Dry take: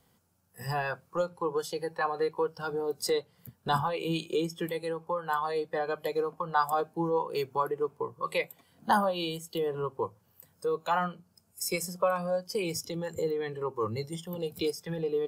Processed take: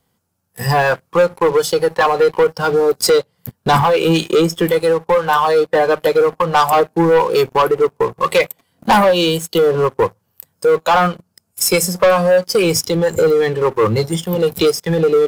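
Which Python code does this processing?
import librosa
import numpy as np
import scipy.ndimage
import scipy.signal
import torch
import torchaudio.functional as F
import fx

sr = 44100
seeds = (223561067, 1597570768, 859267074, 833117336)

y = fx.dynamic_eq(x, sr, hz=530.0, q=4.2, threshold_db=-43.0, ratio=4.0, max_db=4)
y = fx.leveller(y, sr, passes=3)
y = y * 10.0 ** (7.0 / 20.0)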